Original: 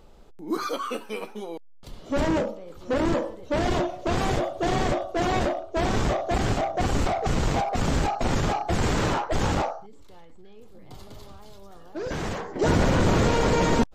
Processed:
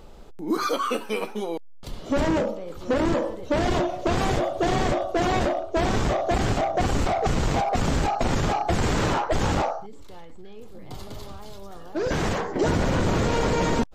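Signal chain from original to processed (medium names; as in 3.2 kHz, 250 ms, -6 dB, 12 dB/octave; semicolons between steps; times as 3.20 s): compression, threshold -26 dBFS, peak gain reduction 9 dB; trim +6 dB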